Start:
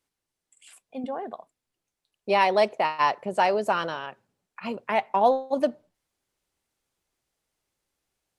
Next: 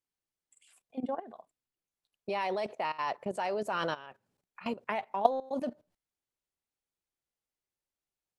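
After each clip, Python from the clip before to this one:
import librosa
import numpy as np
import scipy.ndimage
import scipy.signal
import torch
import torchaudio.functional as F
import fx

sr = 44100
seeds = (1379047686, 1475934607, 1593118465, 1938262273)

y = fx.level_steps(x, sr, step_db=16)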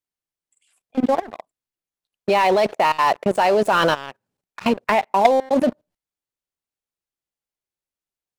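y = fx.leveller(x, sr, passes=3)
y = y * librosa.db_to_amplitude(5.0)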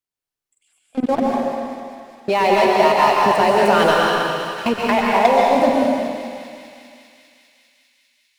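y = fx.echo_thinned(x, sr, ms=200, feedback_pct=84, hz=980.0, wet_db=-12.5)
y = fx.rev_plate(y, sr, seeds[0], rt60_s=2.1, hf_ratio=1.0, predelay_ms=110, drr_db=-3.0)
y = y * librosa.db_to_amplitude(-1.0)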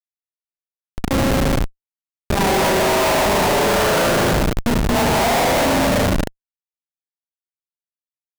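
y = fx.cheby_harmonics(x, sr, harmonics=(3, 6, 7, 8), levels_db=(-31, -24, -19, -22), full_scale_db=-1.5)
y = fx.rev_spring(y, sr, rt60_s=1.7, pass_ms=(37,), chirp_ms=35, drr_db=-3.5)
y = fx.schmitt(y, sr, flips_db=-17.5)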